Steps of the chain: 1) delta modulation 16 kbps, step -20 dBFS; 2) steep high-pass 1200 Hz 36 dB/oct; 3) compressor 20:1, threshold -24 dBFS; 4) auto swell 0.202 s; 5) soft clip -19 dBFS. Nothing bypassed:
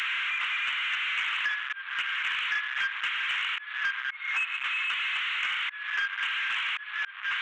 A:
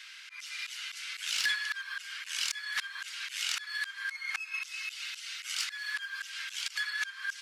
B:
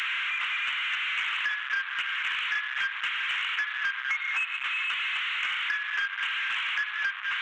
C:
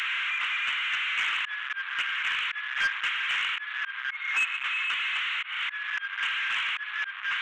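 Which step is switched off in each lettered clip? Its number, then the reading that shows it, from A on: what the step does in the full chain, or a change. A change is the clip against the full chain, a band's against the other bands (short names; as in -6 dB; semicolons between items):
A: 1, crest factor change +7.0 dB; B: 4, momentary loudness spread change -2 LU; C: 3, mean gain reduction 2.0 dB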